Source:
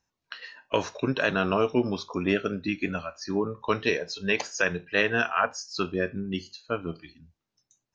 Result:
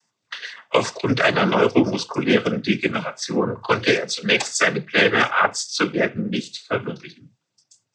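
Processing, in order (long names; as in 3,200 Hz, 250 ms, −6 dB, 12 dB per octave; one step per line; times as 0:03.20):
high-shelf EQ 5,800 Hz +8 dB
cochlear-implant simulation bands 16
level +7.5 dB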